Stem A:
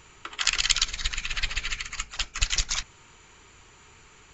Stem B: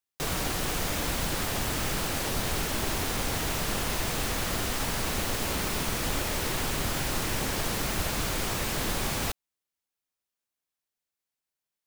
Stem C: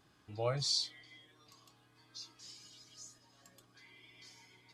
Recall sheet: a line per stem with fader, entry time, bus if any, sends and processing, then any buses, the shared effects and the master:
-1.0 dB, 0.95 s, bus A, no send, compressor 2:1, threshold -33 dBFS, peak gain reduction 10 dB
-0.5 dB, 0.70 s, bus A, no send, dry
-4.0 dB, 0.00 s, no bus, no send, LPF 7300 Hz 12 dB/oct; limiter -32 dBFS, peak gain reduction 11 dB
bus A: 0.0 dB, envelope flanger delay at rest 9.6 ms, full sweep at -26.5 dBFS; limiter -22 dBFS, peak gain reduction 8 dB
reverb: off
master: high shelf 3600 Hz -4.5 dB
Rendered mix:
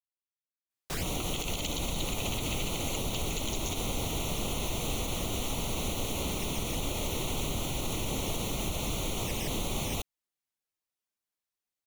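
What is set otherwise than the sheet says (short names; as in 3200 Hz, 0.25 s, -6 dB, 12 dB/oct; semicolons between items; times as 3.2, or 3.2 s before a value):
stem C: muted; master: missing high shelf 3600 Hz -4.5 dB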